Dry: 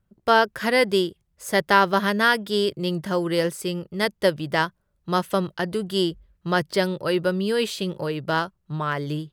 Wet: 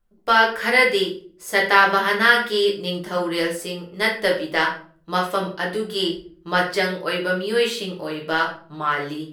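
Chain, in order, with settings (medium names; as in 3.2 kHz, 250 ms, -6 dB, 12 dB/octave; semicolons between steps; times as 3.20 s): peaking EQ 130 Hz -14.5 dB 1.6 oct; simulated room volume 45 m³, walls mixed, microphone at 0.76 m; dynamic bell 2.1 kHz, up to +6 dB, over -33 dBFS, Q 1.2; trim -2 dB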